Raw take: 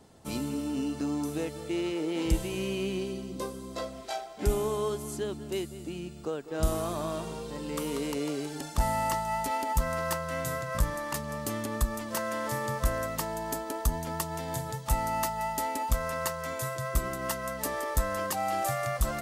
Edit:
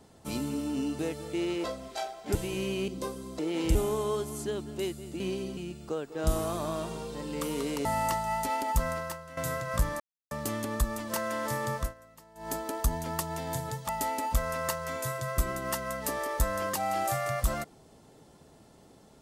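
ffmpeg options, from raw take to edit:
-filter_complex "[0:a]asplit=16[s0][s1][s2][s3][s4][s5][s6][s7][s8][s9][s10][s11][s12][s13][s14][s15];[s0]atrim=end=0.992[s16];[s1]atrim=start=1.348:end=2.002[s17];[s2]atrim=start=3.768:end=4.482[s18];[s3]atrim=start=2.358:end=2.892[s19];[s4]atrim=start=3.258:end=3.772[s20];[s5]atrim=start=1.998:end=2.362[s21];[s6]atrim=start=4.478:end=5.932[s22];[s7]atrim=start=2.888:end=3.262[s23];[s8]atrim=start=5.928:end=8.212[s24];[s9]atrim=start=8.858:end=10.38,asetpts=PTS-STARTPTS,afade=t=out:st=1.032:d=0.49:c=qua:silence=0.223872[s25];[s10]atrim=start=10.38:end=11.01,asetpts=PTS-STARTPTS,afade=t=in:d=0.004:c=hsin:silence=0.223872,afade=t=out:st=0.626:d=0.004:c=hsin[s26];[s11]atrim=start=11.01:end=11.32,asetpts=PTS-STARTPTS,volume=0[s27];[s12]atrim=start=11.32:end=12.95,asetpts=PTS-STARTPTS,afade=t=in:d=0.004:c=hsin,afade=t=out:st=1.44:d=0.19:silence=0.0794328[s28];[s13]atrim=start=12.95:end=13.36,asetpts=PTS-STARTPTS,volume=0.0794[s29];[s14]atrim=start=13.36:end=14.902,asetpts=PTS-STARTPTS,afade=t=in:d=0.19:silence=0.0794328[s30];[s15]atrim=start=15.458[s31];[s16][s17]acrossfade=d=0.004:c1=hsin:c2=hsin[s32];[s32][s18]acrossfade=d=0.004:c1=hsin:c2=hsin[s33];[s33][s19]acrossfade=d=0.004:c1=hsin:c2=hsin[s34];[s34][s20]acrossfade=d=0.004:c1=hsin:c2=hsin[s35];[s35][s21]acrossfade=d=0.004:c1=hsin:c2=hsin[s36];[s36][s22]acrossfade=d=0.004:c1=hsin:c2=hsin[s37];[s37][s23]acrossfade=d=0.004:c1=hsin:c2=hsin[s38];[s38][s24]acrossfade=d=0.004:c1=hsin:c2=hsin[s39];[s25][s26][s27][s28][s29][s30]concat=n=6:v=0:a=1[s40];[s39][s40]acrossfade=d=0.004:c1=hsin:c2=hsin[s41];[s41][s31]acrossfade=d=0.004:c1=hsin:c2=hsin"

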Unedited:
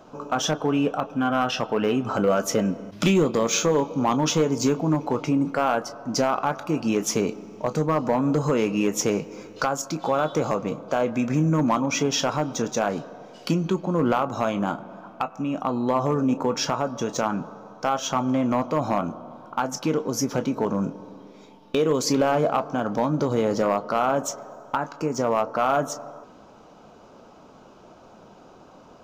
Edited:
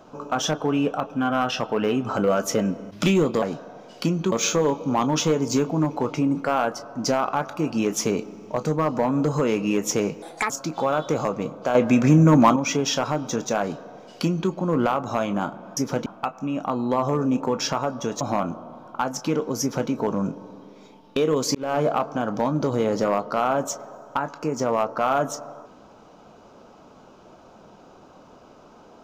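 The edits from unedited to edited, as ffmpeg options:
-filter_complex "[0:a]asplit=11[s0][s1][s2][s3][s4][s5][s6][s7][s8][s9][s10];[s0]atrim=end=3.422[s11];[s1]atrim=start=12.868:end=13.772[s12];[s2]atrim=start=3.418:end=9.324[s13];[s3]atrim=start=9.32:end=9.76,asetpts=PTS-STARTPTS,asetrate=69678,aresample=44100,atrim=end_sample=12281,asetpts=PTS-STARTPTS[s14];[s4]atrim=start=9.756:end=11.012[s15];[s5]atrim=start=11.008:end=11.822,asetpts=PTS-STARTPTS,volume=2.11[s16];[s6]atrim=start=11.818:end=15.032[s17];[s7]atrim=start=20.188:end=20.482[s18];[s8]atrim=start=15.028:end=17.182[s19];[s9]atrim=start=18.788:end=22.13,asetpts=PTS-STARTPTS,afade=t=out:st=3.338:d=0.004:c=hsin[s20];[s10]atrim=start=22.13,asetpts=PTS-STARTPTS,afade=t=in:d=0.25[s21];[s11][s12]acrossfade=d=0.004:c1=hsin:c2=hsin[s22];[s22][s13]acrossfade=d=0.004:c1=hsin:c2=hsin[s23];[s23][s14]acrossfade=d=0.004:c1=hsin:c2=hsin[s24];[s24][s15]acrossfade=d=0.004:c1=hsin:c2=hsin[s25];[s25][s16]acrossfade=d=0.004:c1=hsin:c2=hsin[s26];[s26][s17]acrossfade=d=0.004:c1=hsin:c2=hsin[s27];[s27][s18]acrossfade=d=0.004:c1=hsin:c2=hsin[s28];[s28][s19]acrossfade=d=0.004:c1=hsin:c2=hsin[s29];[s20][s21]concat=n=2:v=0:a=1[s30];[s29][s30]acrossfade=d=0.004:c1=hsin:c2=hsin"

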